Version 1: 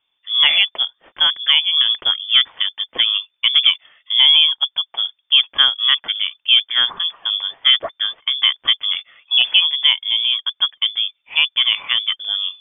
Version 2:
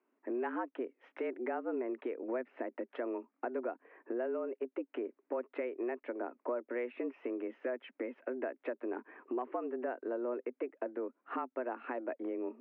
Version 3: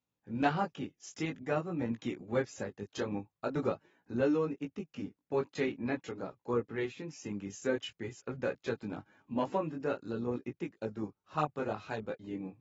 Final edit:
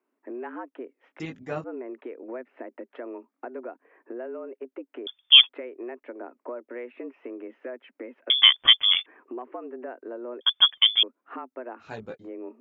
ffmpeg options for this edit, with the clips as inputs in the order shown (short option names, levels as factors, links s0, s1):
-filter_complex "[2:a]asplit=2[s0][s1];[0:a]asplit=3[s2][s3][s4];[1:a]asplit=6[s5][s6][s7][s8][s9][s10];[s5]atrim=end=1.202[s11];[s0]atrim=start=1.198:end=1.642[s12];[s6]atrim=start=1.638:end=5.072[s13];[s2]atrim=start=5.068:end=5.492[s14];[s7]atrim=start=5.488:end=8.302[s15];[s3]atrim=start=8.298:end=9.062[s16];[s8]atrim=start=9.058:end=10.412[s17];[s4]atrim=start=10.408:end=11.032[s18];[s9]atrim=start=11.028:end=11.89[s19];[s1]atrim=start=11.79:end=12.3[s20];[s10]atrim=start=12.2[s21];[s11][s12]acrossfade=d=0.004:c1=hsin:c2=hsin[s22];[s22][s13]acrossfade=d=0.004:c1=hsin:c2=hsin[s23];[s23][s14]acrossfade=d=0.004:c1=hsin:c2=hsin[s24];[s24][s15]acrossfade=d=0.004:c1=hsin:c2=hsin[s25];[s25][s16]acrossfade=d=0.004:c1=hsin:c2=hsin[s26];[s26][s17]acrossfade=d=0.004:c1=hsin:c2=hsin[s27];[s27][s18]acrossfade=d=0.004:c1=hsin:c2=hsin[s28];[s28][s19]acrossfade=d=0.004:c1=hsin:c2=hsin[s29];[s29][s20]acrossfade=d=0.1:c1=tri:c2=tri[s30];[s30][s21]acrossfade=d=0.1:c1=tri:c2=tri"